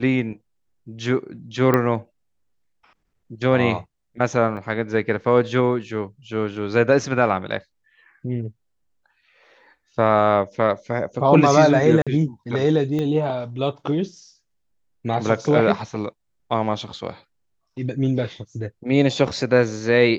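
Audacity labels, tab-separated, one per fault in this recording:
1.740000	1.740000	click −6 dBFS
4.570000	4.570000	drop-out 2.2 ms
12.020000	12.070000	drop-out 46 ms
12.990000	12.990000	click −15 dBFS

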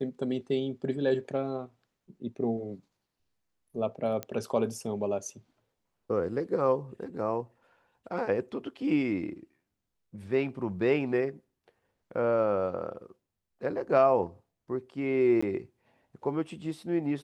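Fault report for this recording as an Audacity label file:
4.230000	4.230000	click −18 dBFS
15.410000	15.430000	drop-out 15 ms

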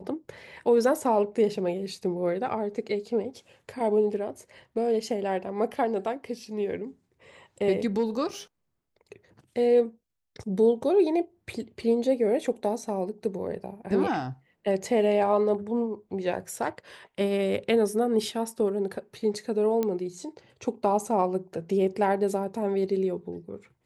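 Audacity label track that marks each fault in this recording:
19.830000	19.830000	click −15 dBFS

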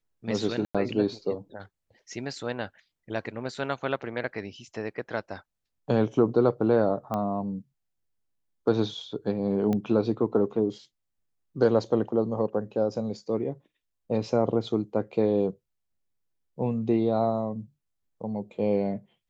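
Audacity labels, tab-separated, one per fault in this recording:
0.650000	0.750000	drop-out 96 ms
7.140000	7.140000	click −18 dBFS
9.730000	9.730000	click −17 dBFS

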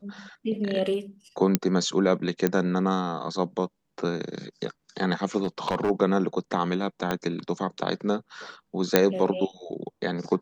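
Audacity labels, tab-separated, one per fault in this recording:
1.550000	1.550000	click −5 dBFS
2.470000	2.470000	click −10 dBFS
5.430000	5.910000	clipping −19.5 dBFS
7.110000	7.110000	click −12 dBFS
8.960000	8.960000	click −2 dBFS

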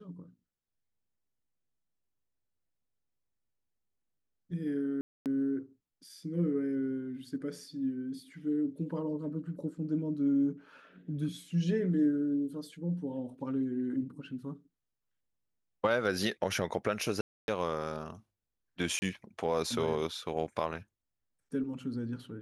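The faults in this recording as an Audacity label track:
5.010000	5.260000	drop-out 248 ms
17.210000	17.480000	drop-out 271 ms
18.990000	19.020000	drop-out 30 ms

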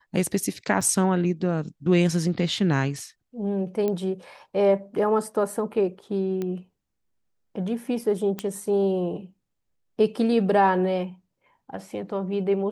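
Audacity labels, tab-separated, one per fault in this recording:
0.810000	0.810000	drop-out 4.9 ms
3.880000	3.880000	click −15 dBFS
6.420000	6.420000	click −18 dBFS
8.390000	8.390000	click −14 dBFS

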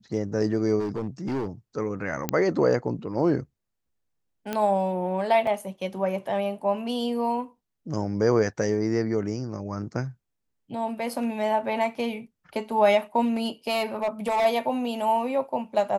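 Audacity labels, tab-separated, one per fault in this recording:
0.790000	1.470000	clipping −24.5 dBFS
2.290000	2.290000	click −8 dBFS
4.530000	4.530000	click −14 dBFS
5.470000	5.470000	drop-out 2.9 ms
13.250000	14.460000	clipping −20.5 dBFS

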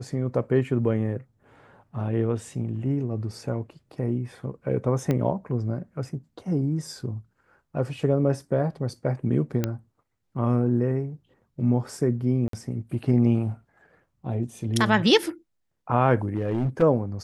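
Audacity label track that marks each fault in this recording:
5.110000	5.110000	click −13 dBFS
9.640000	9.640000	click −11 dBFS
12.480000	12.530000	drop-out 53 ms
16.240000	16.830000	clipping −20.5 dBFS

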